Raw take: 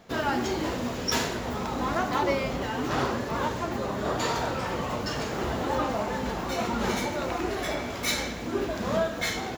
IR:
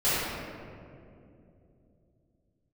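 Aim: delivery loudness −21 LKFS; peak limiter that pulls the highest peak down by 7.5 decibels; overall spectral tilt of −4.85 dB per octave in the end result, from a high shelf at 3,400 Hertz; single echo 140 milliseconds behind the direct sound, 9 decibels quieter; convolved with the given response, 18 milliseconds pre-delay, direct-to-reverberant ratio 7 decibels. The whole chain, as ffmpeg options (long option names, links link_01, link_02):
-filter_complex "[0:a]highshelf=frequency=3400:gain=-8.5,alimiter=limit=-21.5dB:level=0:latency=1,aecho=1:1:140:0.355,asplit=2[link_01][link_02];[1:a]atrim=start_sample=2205,adelay=18[link_03];[link_02][link_03]afir=irnorm=-1:irlink=0,volume=-22dB[link_04];[link_01][link_04]amix=inputs=2:normalize=0,volume=9dB"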